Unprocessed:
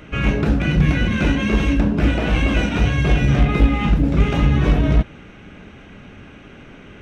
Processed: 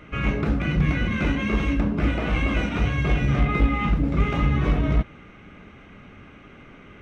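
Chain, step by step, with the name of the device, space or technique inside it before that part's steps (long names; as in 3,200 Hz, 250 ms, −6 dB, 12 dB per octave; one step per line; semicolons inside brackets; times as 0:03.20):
inside a helmet (high-shelf EQ 4,900 Hz −6 dB; hollow resonant body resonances 1,200/2,100 Hz, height 8 dB, ringing for 20 ms)
level −5.5 dB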